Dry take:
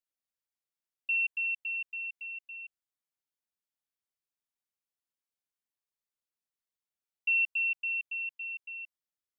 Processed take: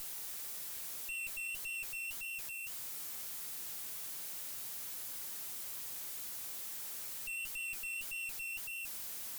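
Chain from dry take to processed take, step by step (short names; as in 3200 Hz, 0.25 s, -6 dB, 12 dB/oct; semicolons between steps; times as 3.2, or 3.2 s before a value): switching spikes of -32 dBFS; tube stage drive 43 dB, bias 0.8; flange 1.7 Hz, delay 5.8 ms, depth 6.5 ms, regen -70%; gain +7.5 dB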